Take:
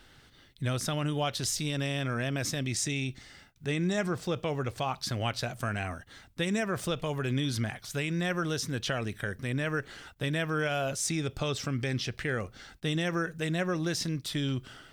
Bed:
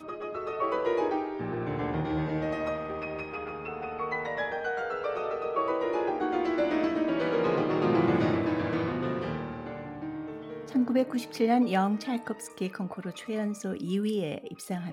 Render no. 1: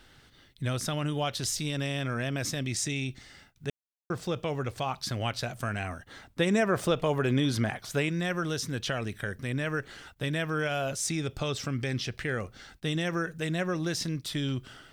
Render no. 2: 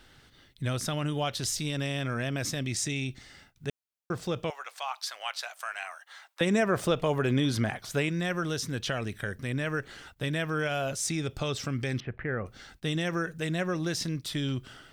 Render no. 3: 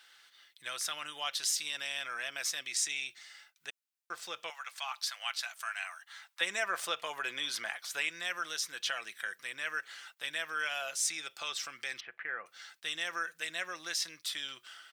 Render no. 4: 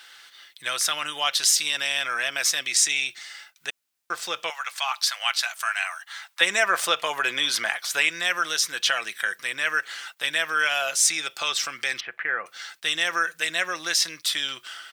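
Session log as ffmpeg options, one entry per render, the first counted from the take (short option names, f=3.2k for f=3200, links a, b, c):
-filter_complex "[0:a]asettb=1/sr,asplit=3[a][b][c];[a]atrim=end=6.064[d];[b]atrim=start=6.06:end=8.09,asetpts=PTS-STARTPTS,afade=t=in:d=0.004:c=qsin,afade=t=out:st=2.026:d=0.004:c=qsin,equalizer=f=590:w=0.35:g=7[e];[c]atrim=start=8.086[f];[d][e]acrossfade=d=0.004:c1=hsin:c2=qsin[g];[g][f]acrossfade=d=0.004:c1=qsin:c2=hsin,asplit=3[h][i][j];[h]atrim=end=3.7,asetpts=PTS-STARTPTS,afade=t=out:st=3.696:d=0.004:c=hsin[k];[i]atrim=start=3.7:end=4.1,asetpts=PTS-STARTPTS,volume=0[l];[j]atrim=start=4.1,asetpts=PTS-STARTPTS,afade=t=in:d=0.004:c=hsin[m];[k][l][m]concat=n=3:v=0:a=1"
-filter_complex "[0:a]asettb=1/sr,asplit=3[a][b][c];[a]atrim=end=4.504[d];[b]atrim=start=4.5:end=6.41,asetpts=PTS-STARTPTS,afade=t=in:d=0.004:c=qsin,afade=t=out:st=1.906:d=0.004:c=qsin,highpass=f=790:w=0.5412,highpass=f=790:w=1.3066[e];[c]atrim=start=6.406[f];[d][e]acrossfade=d=0.004:c1=hsin:c2=qsin[g];[g][f]acrossfade=d=0.004:c1=qsin:c2=hsin,asettb=1/sr,asplit=3[h][i][j];[h]atrim=end=12.004[k];[i]atrim=start=12:end=12.46,asetpts=PTS-STARTPTS,afade=t=in:d=0.004:c=qsin,afade=t=out:st=0.456:d=0.004:c=qsin,lowpass=f=1.9k:w=0.5412,lowpass=f=1.9k:w=1.3066[l];[j]atrim=start=12.456[m];[k][l]acrossfade=d=0.004:c1=hsin:c2=qsin[n];[n][m]acrossfade=d=0.004:c1=qsin:c2=hsin"
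-af "highpass=1.3k,aecho=1:1:5.9:0.32"
-af "volume=12dB"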